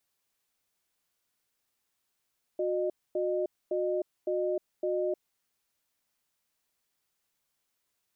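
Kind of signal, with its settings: cadence 364 Hz, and 612 Hz, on 0.31 s, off 0.25 s, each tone -29.5 dBFS 2.59 s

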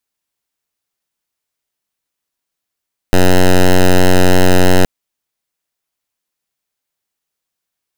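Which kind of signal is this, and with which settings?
pulse 91.5 Hz, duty 8% -6.5 dBFS 1.72 s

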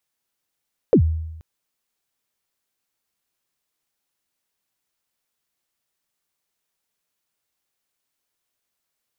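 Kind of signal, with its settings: kick drum length 0.48 s, from 550 Hz, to 80 Hz, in 85 ms, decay 0.96 s, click off, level -8 dB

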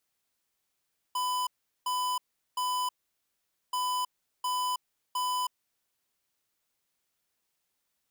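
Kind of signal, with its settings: beep pattern square 1000 Hz, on 0.32 s, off 0.39 s, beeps 3, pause 0.84 s, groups 2, -30 dBFS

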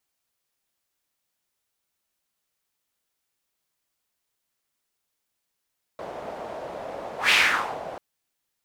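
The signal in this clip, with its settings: whoosh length 1.99 s, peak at 1.32, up 0.14 s, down 0.54 s, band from 630 Hz, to 2500 Hz, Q 2.8, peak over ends 18 dB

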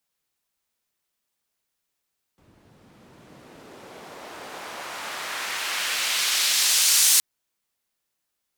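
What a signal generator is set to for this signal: swept filtered noise white, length 4.82 s bandpass, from 100 Hz, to 7500 Hz, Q 0.83, exponential, gain ramp +25 dB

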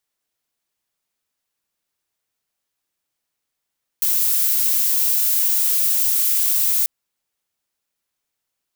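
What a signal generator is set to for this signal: noise violet, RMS -18 dBFS 2.84 s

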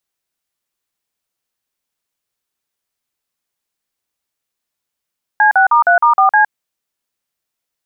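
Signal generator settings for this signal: DTMF "C6*3*4C", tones 0.112 s, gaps 44 ms, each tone -9.5 dBFS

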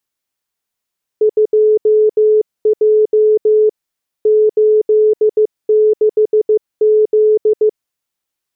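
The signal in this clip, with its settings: Morse "2J 86Z" 15 wpm 429 Hz -7 dBFS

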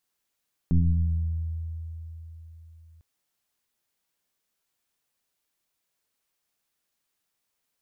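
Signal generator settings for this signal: FM tone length 2.30 s, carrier 81.7 Hz, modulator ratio 1.05, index 1.5, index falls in 2.18 s exponential, decay 3.95 s, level -16 dB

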